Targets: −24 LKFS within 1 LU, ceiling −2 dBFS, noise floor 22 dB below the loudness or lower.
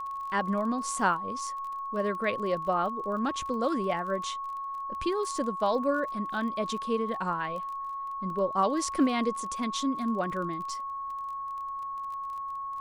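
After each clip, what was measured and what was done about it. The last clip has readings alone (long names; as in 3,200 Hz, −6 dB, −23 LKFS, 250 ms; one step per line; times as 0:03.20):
crackle rate 25 per second; interfering tone 1,100 Hz; level of the tone −33 dBFS; integrated loudness −30.5 LKFS; sample peak −12.5 dBFS; target loudness −24.0 LKFS
→ click removal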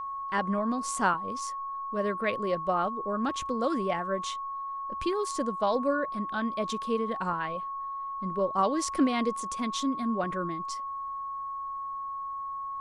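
crackle rate 0 per second; interfering tone 1,100 Hz; level of the tone −33 dBFS
→ notch filter 1,100 Hz, Q 30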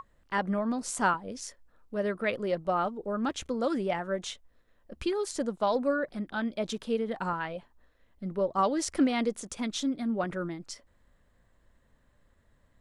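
interfering tone none found; integrated loudness −31.0 LKFS; sample peak −13.5 dBFS; target loudness −24.0 LKFS
→ level +7 dB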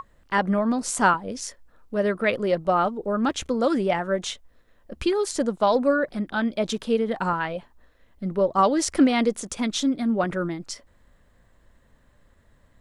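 integrated loudness −24.0 LKFS; sample peak −6.5 dBFS; background noise floor −60 dBFS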